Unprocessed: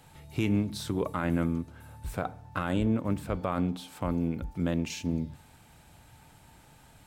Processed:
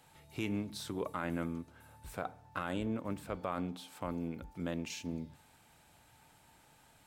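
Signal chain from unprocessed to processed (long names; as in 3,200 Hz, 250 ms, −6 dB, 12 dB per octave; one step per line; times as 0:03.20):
low-shelf EQ 210 Hz −9.5 dB
level −5 dB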